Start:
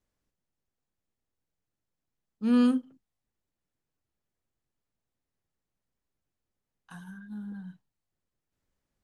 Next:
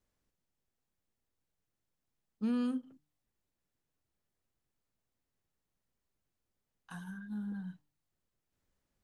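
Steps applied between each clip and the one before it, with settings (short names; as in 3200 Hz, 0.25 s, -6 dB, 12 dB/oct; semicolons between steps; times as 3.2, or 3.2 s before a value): de-hum 149.1 Hz, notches 2; compressor 10:1, threshold -30 dBFS, peak gain reduction 11.5 dB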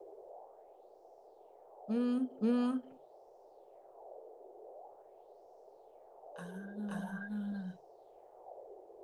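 reverse echo 0.528 s -3 dB; band noise 380–790 Hz -59 dBFS; LFO bell 0.45 Hz 350–5600 Hz +11 dB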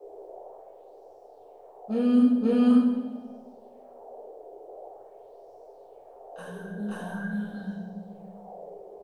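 feedback echo 0.138 s, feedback 60%, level -18 dB; reverb RT60 1.0 s, pre-delay 4 ms, DRR -7 dB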